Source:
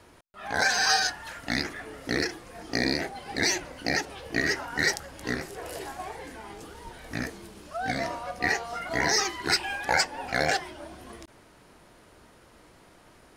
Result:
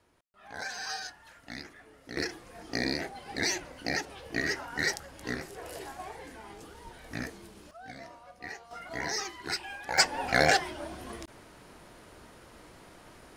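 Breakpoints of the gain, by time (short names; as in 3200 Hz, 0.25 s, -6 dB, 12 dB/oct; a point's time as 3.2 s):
-14 dB
from 2.17 s -4.5 dB
from 7.71 s -16 dB
from 8.71 s -9 dB
from 9.98 s +2.5 dB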